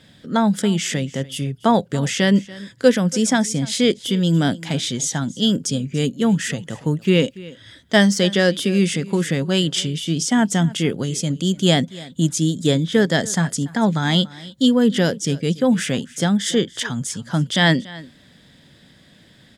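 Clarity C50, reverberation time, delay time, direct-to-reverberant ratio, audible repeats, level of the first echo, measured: no reverb audible, no reverb audible, 286 ms, no reverb audible, 1, −20.0 dB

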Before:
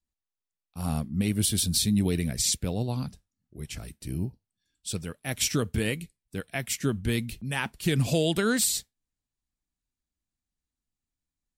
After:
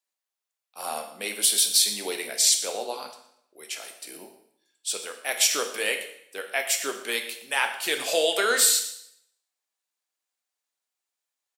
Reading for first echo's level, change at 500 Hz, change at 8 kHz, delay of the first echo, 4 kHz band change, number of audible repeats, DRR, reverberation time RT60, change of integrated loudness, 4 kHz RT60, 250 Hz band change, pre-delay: −16.0 dB, +2.5 dB, +6.5 dB, 117 ms, +6.5 dB, 1, 4.5 dB, 0.70 s, +4.0 dB, 0.65 s, −14.5 dB, 6 ms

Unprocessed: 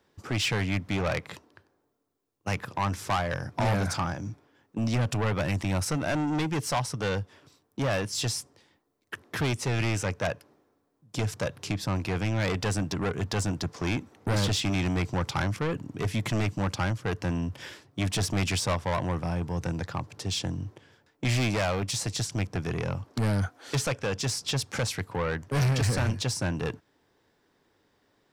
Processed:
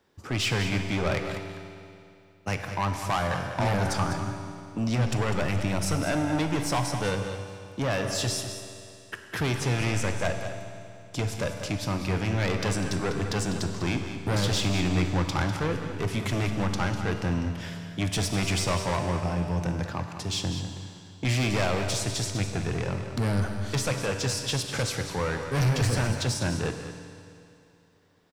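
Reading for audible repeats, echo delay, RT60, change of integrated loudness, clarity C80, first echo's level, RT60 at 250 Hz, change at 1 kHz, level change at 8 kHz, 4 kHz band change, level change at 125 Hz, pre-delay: 1, 199 ms, 2.6 s, +1.0 dB, 5.5 dB, −10.0 dB, 2.6 s, +1.5 dB, +1.5 dB, +1.5 dB, +1.0 dB, 10 ms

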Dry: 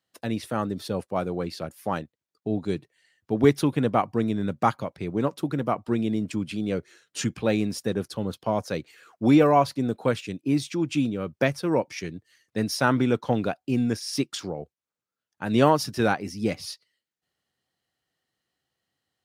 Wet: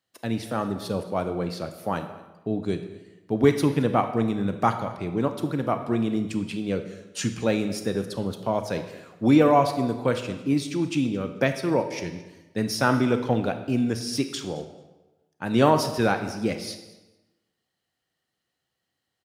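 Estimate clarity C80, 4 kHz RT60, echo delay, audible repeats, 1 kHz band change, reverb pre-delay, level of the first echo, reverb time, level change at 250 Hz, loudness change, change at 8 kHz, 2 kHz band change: 11.0 dB, 0.85 s, 220 ms, 1, +0.5 dB, 27 ms, −21.0 dB, 1.1 s, +0.5 dB, +0.5 dB, +0.5 dB, +0.5 dB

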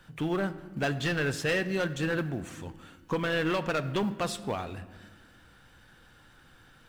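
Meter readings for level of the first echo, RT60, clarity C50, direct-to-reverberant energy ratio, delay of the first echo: no echo audible, 1.5 s, 14.5 dB, 12.0 dB, no echo audible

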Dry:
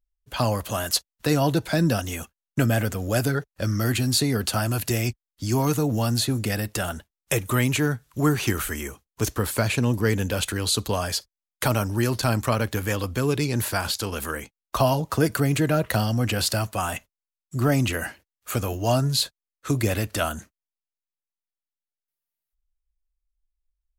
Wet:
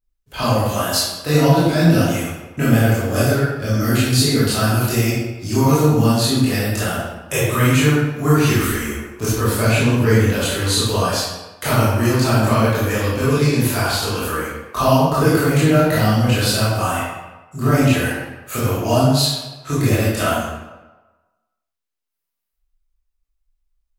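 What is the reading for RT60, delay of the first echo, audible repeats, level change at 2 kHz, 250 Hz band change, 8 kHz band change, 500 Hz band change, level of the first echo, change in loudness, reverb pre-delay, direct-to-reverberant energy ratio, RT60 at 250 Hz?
1.2 s, no echo audible, no echo audible, +7.0 dB, +8.0 dB, +5.0 dB, +7.5 dB, no echo audible, +7.0 dB, 18 ms, −11.0 dB, 1.0 s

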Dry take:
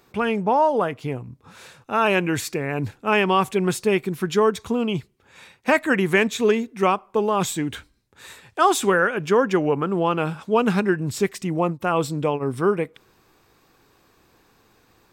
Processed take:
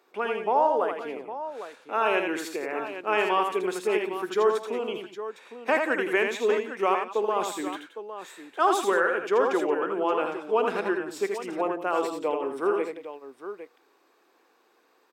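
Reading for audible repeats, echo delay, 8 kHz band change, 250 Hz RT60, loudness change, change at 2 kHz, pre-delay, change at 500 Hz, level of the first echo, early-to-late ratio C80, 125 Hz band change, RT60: 4, 51 ms, −9.5 dB, no reverb audible, −5.0 dB, −4.5 dB, no reverb audible, −3.5 dB, −18.0 dB, no reverb audible, below −20 dB, no reverb audible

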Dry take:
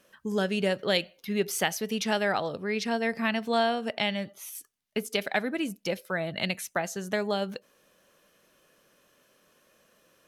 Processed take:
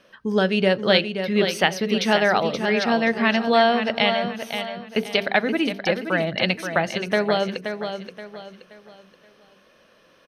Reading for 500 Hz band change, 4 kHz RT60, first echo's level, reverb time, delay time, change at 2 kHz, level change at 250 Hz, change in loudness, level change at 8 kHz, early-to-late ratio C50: +8.5 dB, no reverb audible, −8.0 dB, no reverb audible, 526 ms, +8.5 dB, +8.0 dB, +8.0 dB, −1.5 dB, no reverb audible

